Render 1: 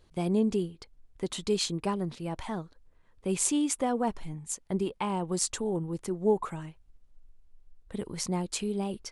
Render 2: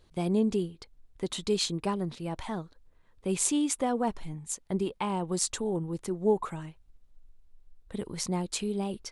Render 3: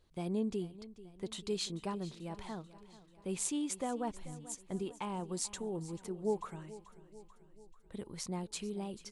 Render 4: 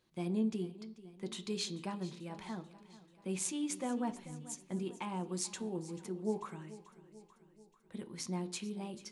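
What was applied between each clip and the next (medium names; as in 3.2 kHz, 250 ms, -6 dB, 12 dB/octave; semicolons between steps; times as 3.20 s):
peaking EQ 3.8 kHz +3 dB 0.25 oct
feedback delay 438 ms, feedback 57%, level -17 dB; trim -8.5 dB
reverberation RT60 0.60 s, pre-delay 3 ms, DRR 9 dB; trim -1 dB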